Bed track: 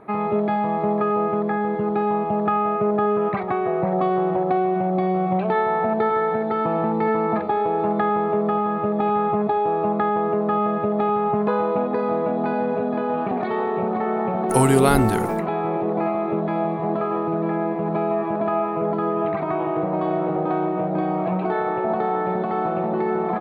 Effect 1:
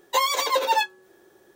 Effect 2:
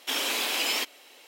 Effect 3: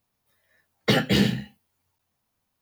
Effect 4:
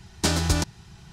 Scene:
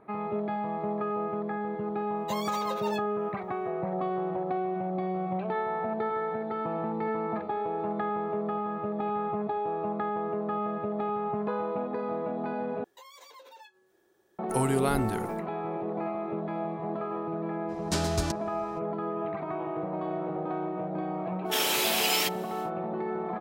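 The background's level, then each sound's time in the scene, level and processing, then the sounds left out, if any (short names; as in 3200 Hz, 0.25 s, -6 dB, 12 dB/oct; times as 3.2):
bed track -10 dB
2.15 add 1 -15 dB
12.84 replace with 1 -12.5 dB + compressor 4:1, threshold -39 dBFS
17.68 add 4 -7.5 dB, fades 0.02 s
21.44 add 2 -0.5 dB, fades 0.10 s + high shelf 11000 Hz +9 dB
not used: 3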